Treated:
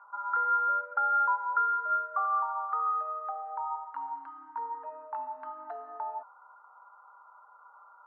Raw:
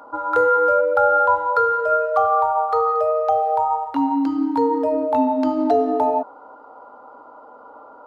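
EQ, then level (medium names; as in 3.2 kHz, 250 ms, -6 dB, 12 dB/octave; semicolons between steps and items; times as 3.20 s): Butterworth band-pass 1.3 kHz, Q 1.8; distance through air 79 m; -7.0 dB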